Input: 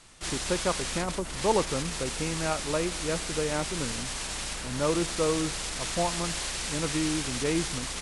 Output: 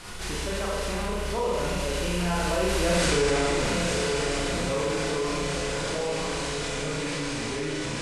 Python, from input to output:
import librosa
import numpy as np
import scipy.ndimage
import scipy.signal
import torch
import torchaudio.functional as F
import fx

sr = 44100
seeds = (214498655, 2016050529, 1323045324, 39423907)

p1 = fx.rattle_buzz(x, sr, strikes_db=-34.0, level_db=-28.0)
p2 = fx.doppler_pass(p1, sr, speed_mps=28, closest_m=3.2, pass_at_s=2.99)
p3 = fx.high_shelf(p2, sr, hz=5600.0, db=-9.0)
p4 = fx.doubler(p3, sr, ms=33.0, db=-5.0)
p5 = p4 + fx.echo_diffused(p4, sr, ms=935, feedback_pct=51, wet_db=-12.5, dry=0)
p6 = fx.rev_schroeder(p5, sr, rt60_s=1.1, comb_ms=31, drr_db=-5.0)
p7 = fx.env_flatten(p6, sr, amount_pct=70)
y = p7 * librosa.db_to_amplitude(2.0)